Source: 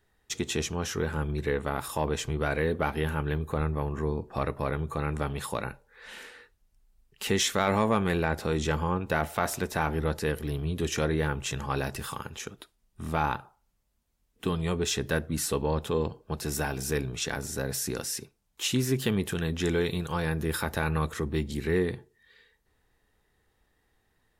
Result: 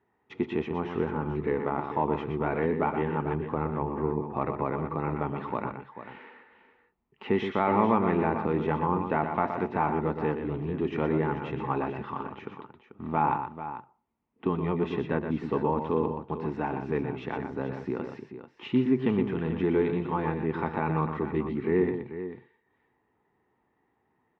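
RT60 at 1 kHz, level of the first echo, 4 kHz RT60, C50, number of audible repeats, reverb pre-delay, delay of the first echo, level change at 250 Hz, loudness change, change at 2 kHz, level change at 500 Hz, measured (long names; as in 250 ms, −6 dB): no reverb audible, −7.5 dB, no reverb audible, no reverb audible, 2, no reverb audible, 121 ms, +3.0 dB, +0.5 dB, −4.5 dB, +1.5 dB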